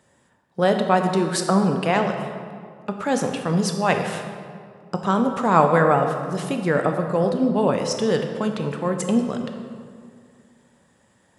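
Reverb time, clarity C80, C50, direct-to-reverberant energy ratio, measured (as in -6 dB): 2.1 s, 7.0 dB, 6.0 dB, 4.5 dB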